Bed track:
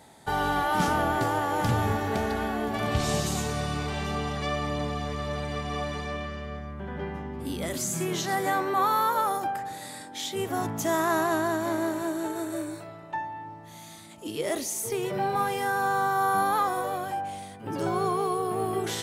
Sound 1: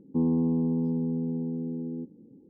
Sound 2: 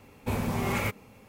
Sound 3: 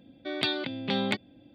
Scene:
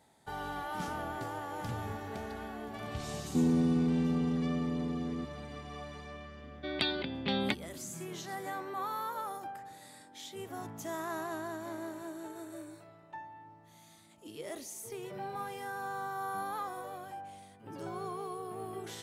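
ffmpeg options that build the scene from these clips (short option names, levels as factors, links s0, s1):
-filter_complex "[0:a]volume=0.224[s0];[1:a]lowpass=1000,atrim=end=2.49,asetpts=PTS-STARTPTS,volume=0.75,afade=t=in:d=0.004:c=hsin,afade=t=out:st=2.486:d=0.004:c=hsin,adelay=3200[s1];[3:a]atrim=end=1.54,asetpts=PTS-STARTPTS,volume=0.668,afade=t=in:d=0.004:c=hsin,afade=t=out:st=1.536:d=0.004:c=hsin,adelay=6380[s2];[s0][s1][s2]amix=inputs=3:normalize=0"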